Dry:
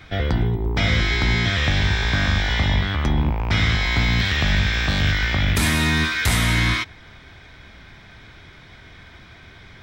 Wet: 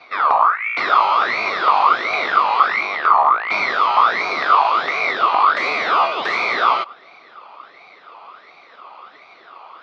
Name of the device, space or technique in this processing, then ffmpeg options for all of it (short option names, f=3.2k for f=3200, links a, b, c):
voice changer toy: -af "aeval=exprs='val(0)*sin(2*PI*1600*n/s+1600*0.45/1.4*sin(2*PI*1.4*n/s))':c=same,highpass=400,equalizer=f=410:t=q:w=4:g=3,equalizer=f=690:t=q:w=4:g=5,equalizer=f=1.2k:t=q:w=4:g=10,equalizer=f=1.7k:t=q:w=4:g=-9,equalizer=f=3k:t=q:w=4:g=-7,lowpass=f=3.6k:w=0.5412,lowpass=f=3.6k:w=1.3066,volume=4dB"